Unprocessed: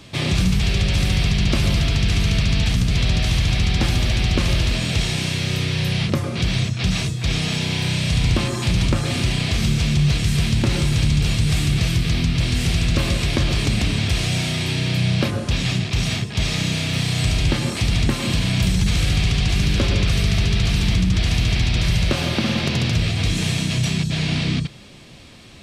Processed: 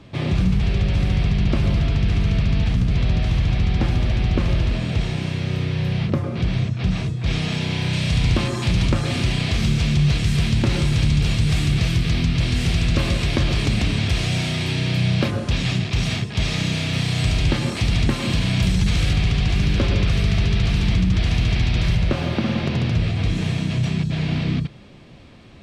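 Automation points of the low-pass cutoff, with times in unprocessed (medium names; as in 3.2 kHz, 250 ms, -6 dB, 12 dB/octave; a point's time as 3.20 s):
low-pass 6 dB/octave
1.2 kHz
from 7.26 s 2.7 kHz
from 7.93 s 4.7 kHz
from 19.13 s 2.7 kHz
from 21.95 s 1.5 kHz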